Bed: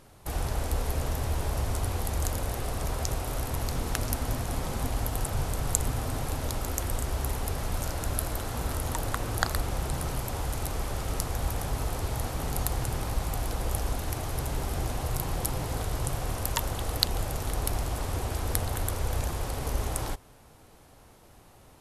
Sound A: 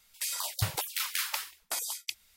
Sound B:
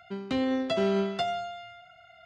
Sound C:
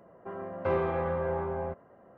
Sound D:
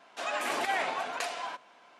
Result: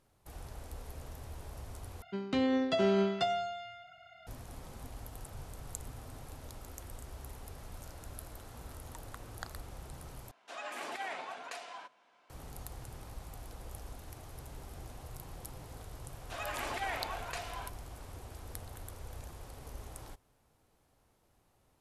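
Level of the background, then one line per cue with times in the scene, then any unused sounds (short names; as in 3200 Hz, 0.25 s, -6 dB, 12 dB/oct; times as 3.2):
bed -16.5 dB
2.02 replace with B -2 dB
10.31 replace with D -10 dB
16.13 add D -7 dB
not used: A, C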